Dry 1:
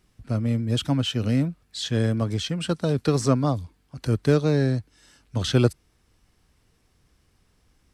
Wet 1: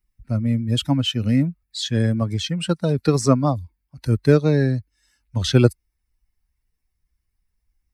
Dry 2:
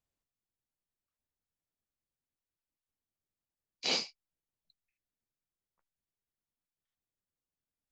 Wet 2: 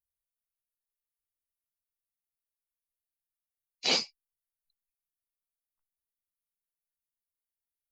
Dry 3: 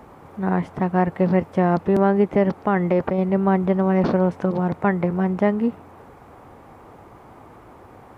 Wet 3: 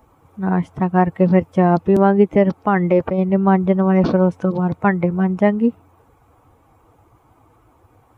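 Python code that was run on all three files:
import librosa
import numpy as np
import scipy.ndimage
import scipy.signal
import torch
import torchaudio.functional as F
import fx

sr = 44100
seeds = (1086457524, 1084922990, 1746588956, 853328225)

y = fx.bin_expand(x, sr, power=1.5)
y = F.gain(torch.from_numpy(y), 6.0).numpy()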